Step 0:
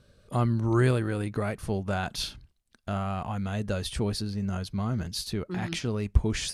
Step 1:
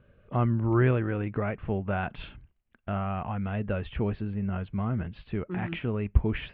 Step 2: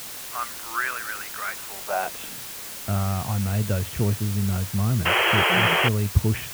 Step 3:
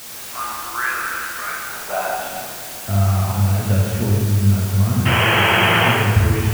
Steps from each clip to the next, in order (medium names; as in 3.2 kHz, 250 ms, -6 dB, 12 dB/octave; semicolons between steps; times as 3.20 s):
steep low-pass 2.9 kHz 48 dB/octave
painted sound noise, 5.05–5.89 s, 330–3300 Hz -22 dBFS; high-pass sweep 1.4 kHz -> 100 Hz, 1.71–2.54 s; added noise white -38 dBFS; trim +1.5 dB
plate-style reverb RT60 2.2 s, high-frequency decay 0.6×, DRR -5 dB; trim -1 dB